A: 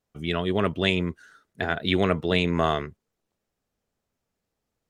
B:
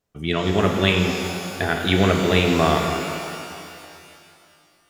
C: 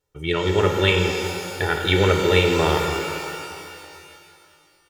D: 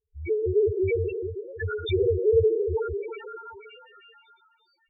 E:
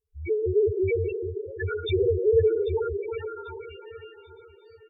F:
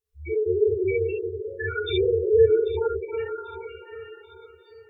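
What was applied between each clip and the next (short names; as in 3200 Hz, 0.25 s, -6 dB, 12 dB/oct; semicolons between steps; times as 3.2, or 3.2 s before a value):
shimmer reverb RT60 2.5 s, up +12 st, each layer -8 dB, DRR 2 dB; gain +3 dB
comb 2.2 ms, depth 80%; gain -1.5 dB
minimum comb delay 2.2 ms; loudest bins only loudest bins 2; gain +3 dB
feedback echo 0.79 s, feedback 36%, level -15.5 dB
low shelf 390 Hz -8.5 dB; non-linear reverb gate 80 ms rising, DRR -3 dB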